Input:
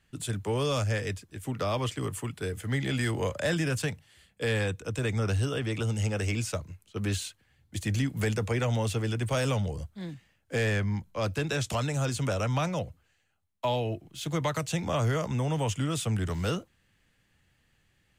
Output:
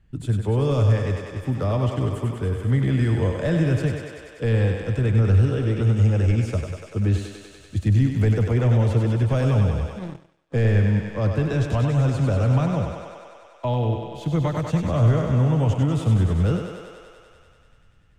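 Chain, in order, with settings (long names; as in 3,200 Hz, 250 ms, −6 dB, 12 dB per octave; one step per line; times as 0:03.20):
spectral tilt −3.5 dB per octave
feedback echo with a high-pass in the loop 97 ms, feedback 81%, high-pass 270 Hz, level −5 dB
0:09.99–0:10.54: power curve on the samples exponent 2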